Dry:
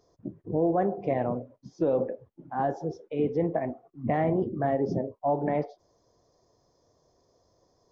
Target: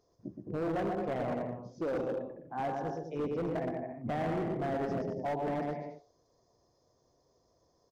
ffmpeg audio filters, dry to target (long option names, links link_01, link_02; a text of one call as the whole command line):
ffmpeg -i in.wav -af "aecho=1:1:120|210|277.5|328.1|366.1:0.631|0.398|0.251|0.158|0.1,asoftclip=type=hard:threshold=-23.5dB,volume=-6dB" out.wav